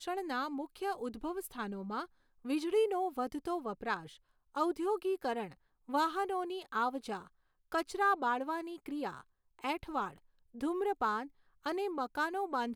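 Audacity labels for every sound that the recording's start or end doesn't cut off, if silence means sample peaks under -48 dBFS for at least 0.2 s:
2.450000	4.160000	sound
4.550000	5.530000	sound
5.890000	7.270000	sound
7.720000	9.210000	sound
9.590000	10.180000	sound
10.550000	11.270000	sound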